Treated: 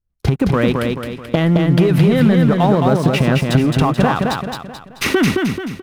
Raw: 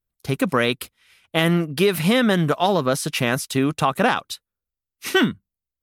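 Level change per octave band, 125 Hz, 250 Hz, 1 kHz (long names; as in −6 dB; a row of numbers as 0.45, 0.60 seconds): +11.0, +7.5, +3.0 decibels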